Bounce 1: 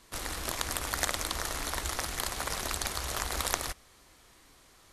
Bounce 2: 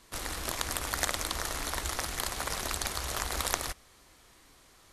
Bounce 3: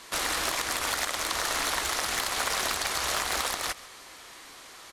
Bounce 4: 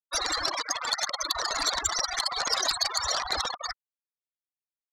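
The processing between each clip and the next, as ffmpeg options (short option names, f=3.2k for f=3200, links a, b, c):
-af anull
-filter_complex "[0:a]acompressor=threshold=-33dB:ratio=6,asplit=2[a][b];[b]highpass=f=720:p=1,volume=20dB,asoftclip=type=tanh:threshold=-14.5dB[c];[a][c]amix=inputs=2:normalize=0,lowpass=f=6.6k:p=1,volume=-6dB,aecho=1:1:135:0.106"
-af "afftfilt=real='re*gte(hypot(re,im),0.0631)':imag='im*gte(hypot(re,im),0.0631)':win_size=1024:overlap=0.75,aeval=exprs='0.15*(cos(1*acos(clip(val(0)/0.15,-1,1)))-cos(1*PI/2))+0.075*(cos(5*acos(clip(val(0)/0.15,-1,1)))-cos(5*PI/2))':c=same,highshelf=f=3.5k:t=q:w=1.5:g=10.5,volume=-6dB"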